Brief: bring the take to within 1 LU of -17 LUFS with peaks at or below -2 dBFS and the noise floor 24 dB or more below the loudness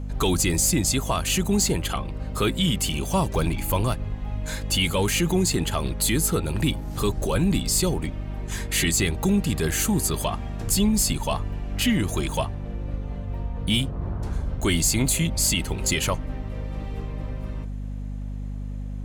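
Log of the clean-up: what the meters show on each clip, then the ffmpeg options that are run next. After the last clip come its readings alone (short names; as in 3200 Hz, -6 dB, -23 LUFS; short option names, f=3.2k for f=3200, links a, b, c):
hum 50 Hz; harmonics up to 250 Hz; hum level -29 dBFS; loudness -24.5 LUFS; peak -10.5 dBFS; loudness target -17.0 LUFS
-> -af "bandreject=f=50:t=h:w=4,bandreject=f=100:t=h:w=4,bandreject=f=150:t=h:w=4,bandreject=f=200:t=h:w=4,bandreject=f=250:t=h:w=4"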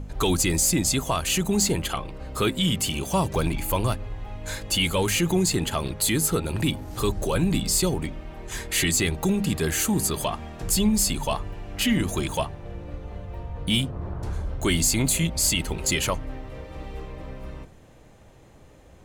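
hum none; loudness -24.0 LUFS; peak -11.0 dBFS; loudness target -17.0 LUFS
-> -af "volume=7dB"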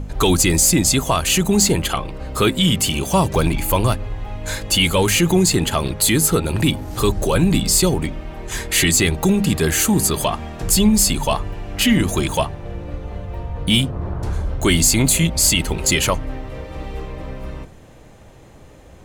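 loudness -17.0 LUFS; peak -4.0 dBFS; noise floor -43 dBFS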